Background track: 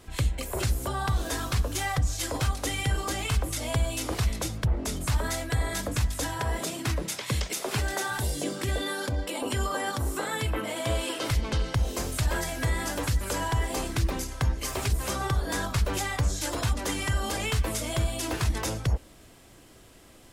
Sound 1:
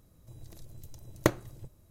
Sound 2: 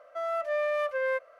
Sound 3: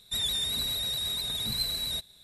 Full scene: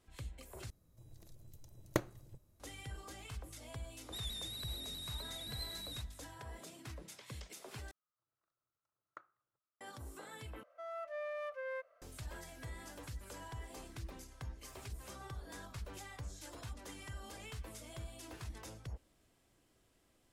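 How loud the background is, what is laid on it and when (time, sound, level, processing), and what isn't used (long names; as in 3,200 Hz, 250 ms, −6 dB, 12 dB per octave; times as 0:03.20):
background track −20 dB
0:00.70: overwrite with 1 −9 dB
0:04.01: mix in 3 −15 dB
0:07.91: overwrite with 1 −13 dB + resonant band-pass 1,300 Hz, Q 8.5
0:10.63: overwrite with 2 −13.5 dB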